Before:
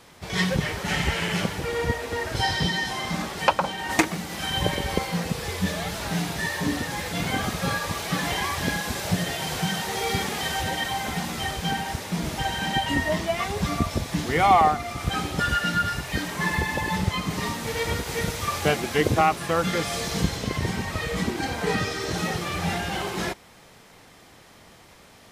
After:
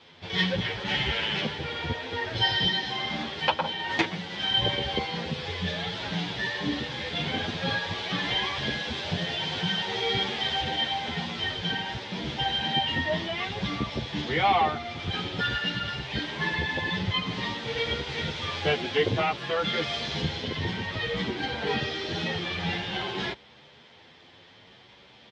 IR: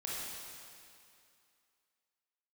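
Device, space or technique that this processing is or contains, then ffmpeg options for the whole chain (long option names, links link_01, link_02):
barber-pole flanger into a guitar amplifier: -filter_complex "[0:a]asplit=2[link_01][link_02];[link_02]adelay=9.4,afreqshift=0.54[link_03];[link_01][link_03]amix=inputs=2:normalize=1,asoftclip=type=tanh:threshold=-13.5dB,highpass=93,equalizer=frequency=180:width_type=q:width=4:gain=-4,equalizer=frequency=290:width_type=q:width=4:gain=-3,equalizer=frequency=670:width_type=q:width=4:gain=-4,equalizer=frequency=1200:width_type=q:width=4:gain=-6,equalizer=frequency=3300:width_type=q:width=4:gain=8,lowpass=frequency=4600:width=0.5412,lowpass=frequency=4600:width=1.3066,volume=1.5dB"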